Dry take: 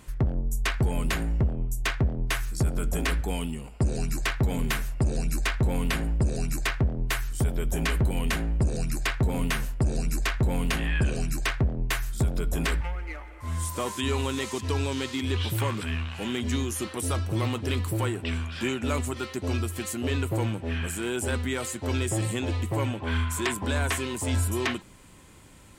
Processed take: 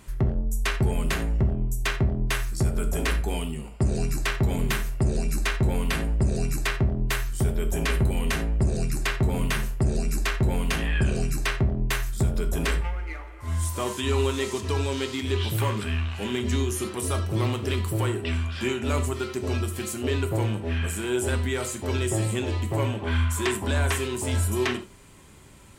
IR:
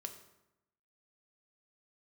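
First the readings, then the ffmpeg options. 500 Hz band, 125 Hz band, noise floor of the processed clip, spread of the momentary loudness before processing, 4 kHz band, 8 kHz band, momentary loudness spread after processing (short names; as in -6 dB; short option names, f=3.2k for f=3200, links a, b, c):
+3.5 dB, +2.0 dB, -40 dBFS, 4 LU, +1.0 dB, +1.0 dB, 4 LU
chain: -filter_complex "[1:a]atrim=start_sample=2205,atrim=end_sample=4410[a];[0:a][a]afir=irnorm=-1:irlink=0,volume=4.5dB"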